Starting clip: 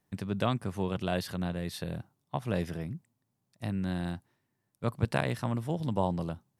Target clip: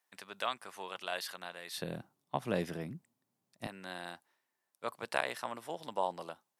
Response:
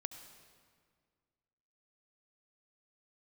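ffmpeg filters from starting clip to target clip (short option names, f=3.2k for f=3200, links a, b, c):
-af "asetnsamples=n=441:p=0,asendcmd='1.78 highpass f 210;3.67 highpass f 630',highpass=910"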